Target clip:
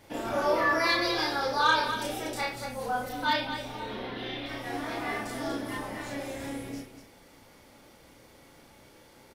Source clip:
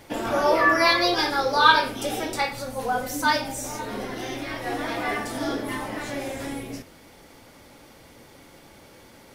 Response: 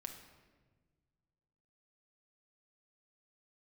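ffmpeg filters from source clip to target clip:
-filter_complex "[0:a]asettb=1/sr,asplit=3[s0][s1][s2];[s0]atrim=end=3.094[s3];[s1]atrim=start=3.09:end=4.46,asetpts=PTS-STARTPTS,afade=t=in:d=0.004:c=qsin,afade=t=out:st=1.366:d=0.004:c=qsin,highshelf=f=5000:t=q:w=3:g=-12[s4];[s2]atrim=start=4.456[s5];[s3][s4]acrossfade=d=0.004:c1=hsin:c2=qsin[s6];[s6][s5]acrossfade=d=0.004:c1=qsin:c2=hsin,asoftclip=type=tanh:threshold=0.422,aecho=1:1:32.07|239.1:0.891|0.447,volume=0.376"

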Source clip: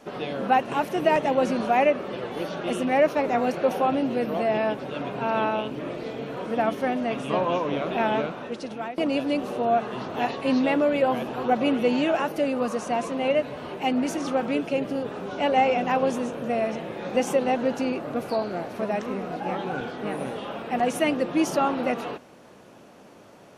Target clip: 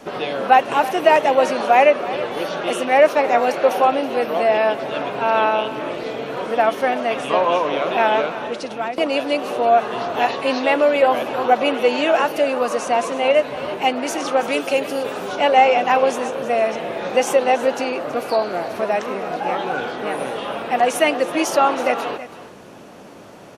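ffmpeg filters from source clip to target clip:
-filter_complex "[0:a]asettb=1/sr,asplit=3[s0][s1][s2];[s0]atrim=end=14.434[s3];[s1]atrim=start=14.43:end=15.36,asetpts=PTS-STARTPTS,afade=t=in:d=0.004:c=qsin,afade=t=out:st=0.926:d=0.004:c=qsin,aemphasis=mode=production:type=50kf[s4];[s2]atrim=start=15.356[s5];[s3][s4]acrossfade=d=0.004:c1=hsin:c2=qsin[s6];[s6][s5]acrossfade=d=0.004:c1=qsin:c2=hsin,acrossover=split=380[s7][s8];[s7]acompressor=threshold=0.00631:ratio=12[s9];[s9][s8]amix=inputs=2:normalize=0,aecho=1:1:325:0.178,volume=2.66"

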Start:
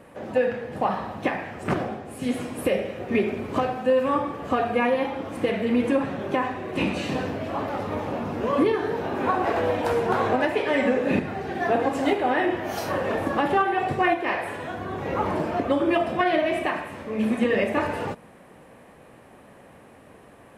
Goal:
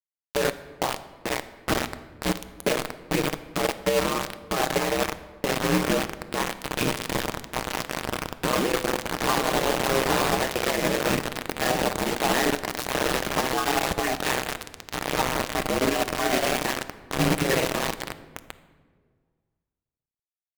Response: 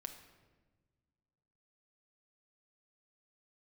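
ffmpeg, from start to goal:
-filter_complex "[0:a]asplit=2[s0][s1];[s1]adelay=932.9,volume=0.355,highshelf=f=4000:g=-21[s2];[s0][s2]amix=inputs=2:normalize=0,aeval=exprs='val(0)*sin(2*PI*65*n/s)':c=same,acrusher=bits=3:mix=0:aa=0.000001,alimiter=limit=0.0891:level=0:latency=1:release=136,asplit=2[s3][s4];[1:a]atrim=start_sample=2205,asetrate=39249,aresample=44100[s5];[s4][s5]afir=irnorm=-1:irlink=0,volume=1.5[s6];[s3][s6]amix=inputs=2:normalize=0"

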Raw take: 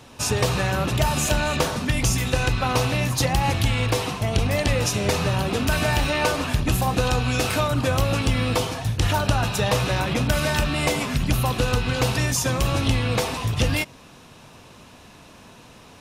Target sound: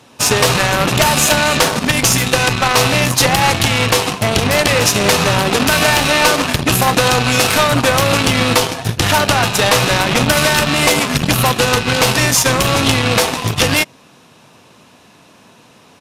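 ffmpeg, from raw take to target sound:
-af "highpass=130,aeval=exprs='0.422*(cos(1*acos(clip(val(0)/0.422,-1,1)))-cos(1*PI/2))+0.0531*(cos(7*acos(clip(val(0)/0.422,-1,1)))-cos(7*PI/2))':c=same,apsyclip=16.8,aresample=32000,aresample=44100,volume=0.596"

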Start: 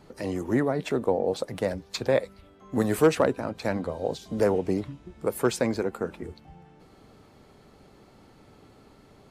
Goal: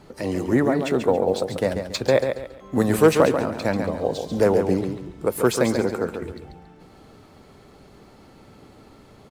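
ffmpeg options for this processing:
-af "aecho=1:1:139|278|417|556:0.447|0.138|0.0429|0.0133,volume=1.68" -ar 44100 -c:a adpcm_ima_wav

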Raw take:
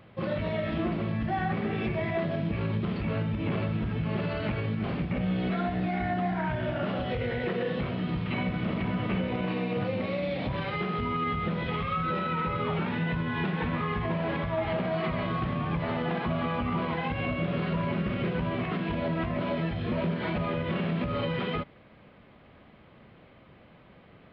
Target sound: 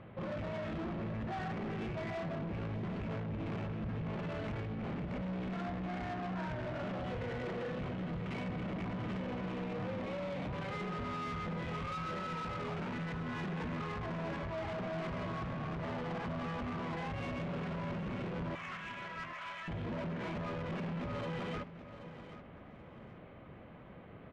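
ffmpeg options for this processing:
-filter_complex "[0:a]asettb=1/sr,asplit=3[s0][s1][s2];[s0]atrim=end=18.554[s3];[s1]atrim=start=18.55:end=19.68,asetpts=PTS-STARTPTS,afade=t=in:d=0.004:c=qsin,afade=t=out:st=1.126:d=0.004:c=qsin,highpass=f=1100:w=0.5412,highpass=f=1100:w=1.3066[s4];[s2]atrim=start=19.676[s5];[s3][s4]acrossfade=d=0.004:c1=hsin:c2=qsin[s6];[s6][s5]acrossfade=d=0.004:c1=qsin:c2=hsin,asplit=2[s7][s8];[s8]acompressor=threshold=0.00708:ratio=6,volume=0.708[s9];[s7][s9]amix=inputs=2:normalize=0,asoftclip=type=tanh:threshold=0.02,adynamicsmooth=sensitivity=4:basefreq=2500,aecho=1:1:779|1558|2337:0.224|0.0604|0.0163,volume=0.75"

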